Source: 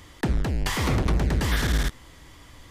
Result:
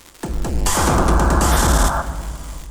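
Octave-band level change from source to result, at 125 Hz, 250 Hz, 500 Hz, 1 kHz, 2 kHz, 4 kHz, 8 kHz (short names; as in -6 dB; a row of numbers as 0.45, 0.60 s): +5.5, +7.0, +10.5, +15.0, +6.0, +5.5, +15.0 dB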